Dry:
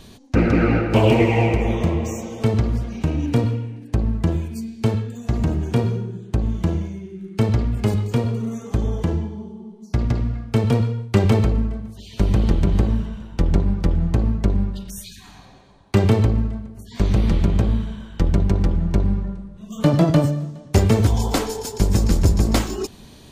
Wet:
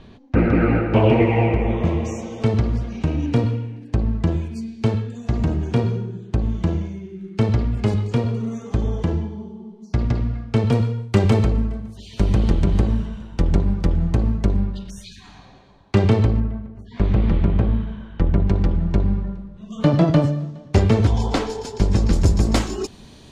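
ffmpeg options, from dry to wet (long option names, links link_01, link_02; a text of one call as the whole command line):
ffmpeg -i in.wav -af "asetnsamples=nb_out_samples=441:pad=0,asendcmd='1.85 lowpass f 6000;10.71 lowpass f 10000;14.6 lowpass f 5500;16.4 lowpass f 2500;18.47 lowpass f 4700;22.13 lowpass f 8500',lowpass=2500" out.wav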